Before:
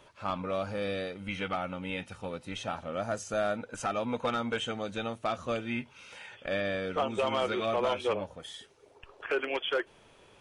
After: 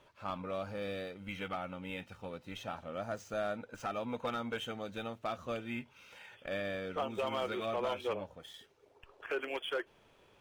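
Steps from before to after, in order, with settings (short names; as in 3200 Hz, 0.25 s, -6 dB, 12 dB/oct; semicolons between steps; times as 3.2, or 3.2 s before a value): median filter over 5 samples; gain -6 dB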